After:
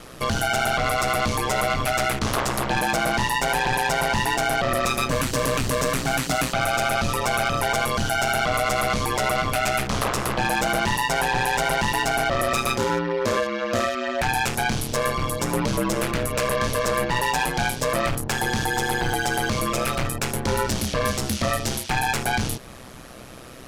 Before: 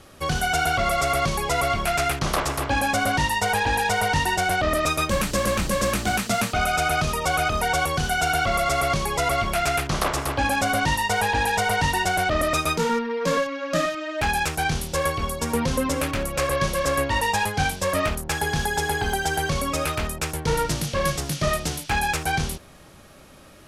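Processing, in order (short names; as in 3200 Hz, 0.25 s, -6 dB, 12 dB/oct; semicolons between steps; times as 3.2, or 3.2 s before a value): in parallel at +1 dB: compressor, threshold -30 dBFS, peak gain reduction 12 dB; on the sum: soft clip -17.5 dBFS, distortion -14 dB; ring modulator 63 Hz; gain +3 dB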